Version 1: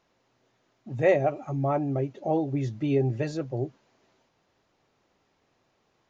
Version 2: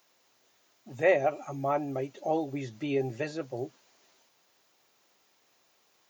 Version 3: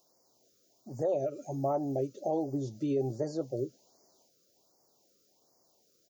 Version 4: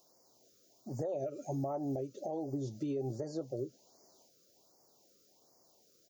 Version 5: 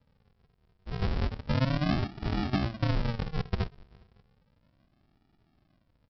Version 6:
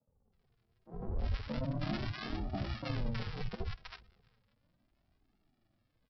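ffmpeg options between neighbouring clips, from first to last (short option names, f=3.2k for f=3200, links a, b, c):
-filter_complex "[0:a]aemphasis=mode=production:type=riaa,acrossover=split=3200[a][b];[b]acompressor=threshold=-54dB:ratio=4:attack=1:release=60[c];[a][c]amix=inputs=2:normalize=0"
-af "firequalizer=gain_entry='entry(610,0);entry(1800,-22);entry(5000,-2)':delay=0.05:min_phase=1,alimiter=limit=-24dB:level=0:latency=1:release=104,afftfilt=real='re*(1-between(b*sr/1024,810*pow(3200/810,0.5+0.5*sin(2*PI*1.3*pts/sr))/1.41,810*pow(3200/810,0.5+0.5*sin(2*PI*1.3*pts/sr))*1.41))':imag='im*(1-between(b*sr/1024,810*pow(3200/810,0.5+0.5*sin(2*PI*1.3*pts/sr))/1.41,810*pow(3200/810,0.5+0.5*sin(2*PI*1.3*pts/sr))*1.41))':win_size=1024:overlap=0.75,volume=2dB"
-af "acompressor=threshold=-31dB:ratio=6,alimiter=level_in=6dB:limit=-24dB:level=0:latency=1:release=441,volume=-6dB,volume=2dB"
-filter_complex "[0:a]asplit=5[a][b][c][d][e];[b]adelay=192,afreqshift=-86,volume=-18.5dB[f];[c]adelay=384,afreqshift=-172,volume=-24.5dB[g];[d]adelay=576,afreqshift=-258,volume=-30.5dB[h];[e]adelay=768,afreqshift=-344,volume=-36.6dB[i];[a][f][g][h][i]amix=inputs=5:normalize=0,aeval=exprs='0.0447*(cos(1*acos(clip(val(0)/0.0447,-1,1)))-cos(1*PI/2))+0.00251*(cos(7*acos(clip(val(0)/0.0447,-1,1)))-cos(7*PI/2))':c=same,aresample=11025,acrusher=samples=30:mix=1:aa=0.000001:lfo=1:lforange=18:lforate=0.33,aresample=44100,volume=8.5dB"
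-filter_complex "[0:a]flanger=delay=1.4:depth=7.7:regen=30:speed=0.79:shape=sinusoidal,acrossover=split=150|990[a][b][c];[a]adelay=70[d];[c]adelay=320[e];[d][b][e]amix=inputs=3:normalize=0,volume=-2.5dB"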